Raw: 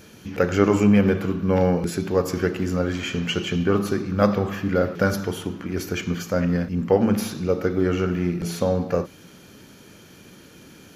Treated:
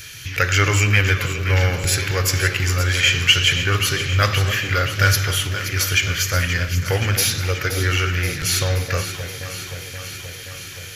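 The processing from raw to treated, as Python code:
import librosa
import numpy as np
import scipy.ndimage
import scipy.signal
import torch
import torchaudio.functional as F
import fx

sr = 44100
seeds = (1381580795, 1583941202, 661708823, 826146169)

p1 = fx.curve_eq(x, sr, hz=(140.0, 190.0, 310.0, 880.0, 1900.0), db=(0, -27, -17, -13, 6))
p2 = np.clip(p1, -10.0 ** (-23.5 / 20.0), 10.0 ** (-23.5 / 20.0))
p3 = p1 + F.gain(torch.from_numpy(p2), -10.0).numpy()
p4 = fx.echo_alternate(p3, sr, ms=263, hz=820.0, feedback_pct=83, wet_db=-9)
p5 = fx.end_taper(p4, sr, db_per_s=250.0)
y = F.gain(torch.from_numpy(p5), 7.0).numpy()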